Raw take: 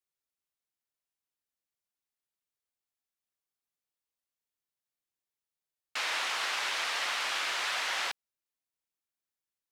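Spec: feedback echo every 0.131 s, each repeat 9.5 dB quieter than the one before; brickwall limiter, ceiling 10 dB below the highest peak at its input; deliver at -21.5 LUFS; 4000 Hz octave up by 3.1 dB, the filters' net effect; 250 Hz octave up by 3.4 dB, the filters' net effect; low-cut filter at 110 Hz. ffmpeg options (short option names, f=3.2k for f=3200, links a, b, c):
-af "highpass=110,equalizer=f=250:t=o:g=5,equalizer=f=4k:t=o:g=4,alimiter=level_in=3.5dB:limit=-24dB:level=0:latency=1,volume=-3.5dB,aecho=1:1:131|262|393|524:0.335|0.111|0.0365|0.012,volume=13dB"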